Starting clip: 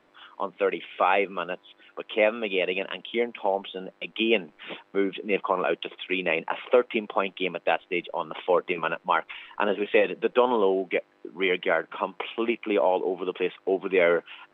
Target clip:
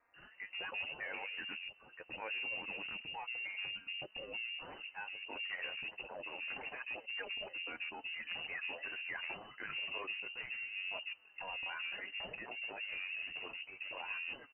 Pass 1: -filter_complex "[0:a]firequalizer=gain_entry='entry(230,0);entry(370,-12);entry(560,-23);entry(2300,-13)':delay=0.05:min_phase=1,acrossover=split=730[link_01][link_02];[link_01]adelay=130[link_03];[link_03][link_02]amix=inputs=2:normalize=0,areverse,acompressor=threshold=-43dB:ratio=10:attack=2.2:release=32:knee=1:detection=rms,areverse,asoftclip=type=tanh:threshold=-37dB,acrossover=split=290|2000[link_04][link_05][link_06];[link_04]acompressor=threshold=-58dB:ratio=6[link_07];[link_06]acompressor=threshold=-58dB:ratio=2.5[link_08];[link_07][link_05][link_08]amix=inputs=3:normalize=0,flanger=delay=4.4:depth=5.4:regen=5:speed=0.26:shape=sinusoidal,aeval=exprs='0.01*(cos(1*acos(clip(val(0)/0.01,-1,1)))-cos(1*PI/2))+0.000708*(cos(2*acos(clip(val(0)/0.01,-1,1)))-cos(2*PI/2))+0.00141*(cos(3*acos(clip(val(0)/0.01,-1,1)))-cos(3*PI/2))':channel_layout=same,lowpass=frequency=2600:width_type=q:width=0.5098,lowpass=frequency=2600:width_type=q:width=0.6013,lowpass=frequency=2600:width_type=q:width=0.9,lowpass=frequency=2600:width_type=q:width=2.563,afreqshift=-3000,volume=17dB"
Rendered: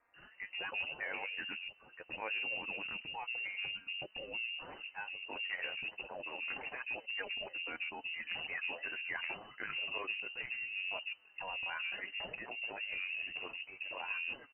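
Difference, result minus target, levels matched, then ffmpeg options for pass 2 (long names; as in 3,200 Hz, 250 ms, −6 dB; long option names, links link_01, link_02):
soft clipping: distortion −12 dB
-filter_complex "[0:a]firequalizer=gain_entry='entry(230,0);entry(370,-12);entry(560,-23);entry(2300,-13)':delay=0.05:min_phase=1,acrossover=split=730[link_01][link_02];[link_01]adelay=130[link_03];[link_03][link_02]amix=inputs=2:normalize=0,areverse,acompressor=threshold=-43dB:ratio=10:attack=2.2:release=32:knee=1:detection=rms,areverse,asoftclip=type=tanh:threshold=-45dB,acrossover=split=290|2000[link_04][link_05][link_06];[link_04]acompressor=threshold=-58dB:ratio=6[link_07];[link_06]acompressor=threshold=-58dB:ratio=2.5[link_08];[link_07][link_05][link_08]amix=inputs=3:normalize=0,flanger=delay=4.4:depth=5.4:regen=5:speed=0.26:shape=sinusoidal,aeval=exprs='0.01*(cos(1*acos(clip(val(0)/0.01,-1,1)))-cos(1*PI/2))+0.000708*(cos(2*acos(clip(val(0)/0.01,-1,1)))-cos(2*PI/2))+0.00141*(cos(3*acos(clip(val(0)/0.01,-1,1)))-cos(3*PI/2))':channel_layout=same,lowpass=frequency=2600:width_type=q:width=0.5098,lowpass=frequency=2600:width_type=q:width=0.6013,lowpass=frequency=2600:width_type=q:width=0.9,lowpass=frequency=2600:width_type=q:width=2.563,afreqshift=-3000,volume=17dB"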